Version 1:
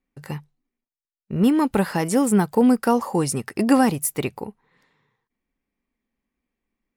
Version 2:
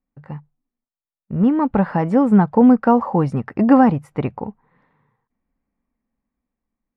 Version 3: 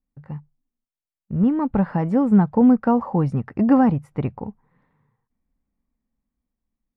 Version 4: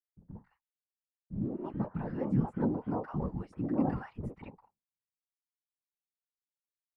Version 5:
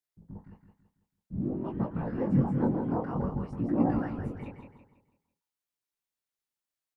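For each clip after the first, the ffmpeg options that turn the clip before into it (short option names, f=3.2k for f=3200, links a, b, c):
-af "lowpass=1.2k,equalizer=f=380:w=2.4:g=-8,dynaudnorm=f=290:g=11:m=11.5dB"
-af "lowshelf=f=200:g=9.5,volume=-6.5dB"
-filter_complex "[0:a]acrossover=split=310|1100[a][b][c];[b]adelay=50[d];[c]adelay=210[e];[a][d][e]amix=inputs=3:normalize=0,agate=range=-33dB:threshold=-45dB:ratio=3:detection=peak,afftfilt=real='hypot(re,im)*cos(2*PI*random(0))':imag='hypot(re,im)*sin(2*PI*random(1))':win_size=512:overlap=0.75,volume=-7.5dB"
-af "flanger=delay=17:depth=7.9:speed=0.53,aecho=1:1:165|330|495|660|825:0.447|0.174|0.0679|0.0265|0.0103,volume=6dB"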